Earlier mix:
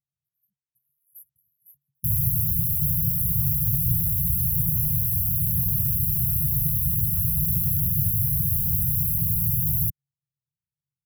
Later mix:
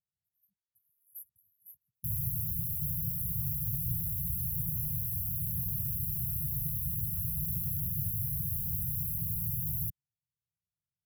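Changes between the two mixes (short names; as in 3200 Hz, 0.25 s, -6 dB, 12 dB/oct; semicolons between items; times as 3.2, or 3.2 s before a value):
speech: add bell 140 Hz -13.5 dB 0.2 oct; background -10.5 dB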